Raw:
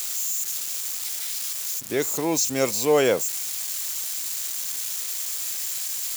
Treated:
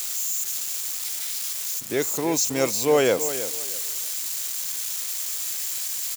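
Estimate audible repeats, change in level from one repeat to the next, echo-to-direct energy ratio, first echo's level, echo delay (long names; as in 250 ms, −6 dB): 2, −13.0 dB, −12.0 dB, −12.0 dB, 320 ms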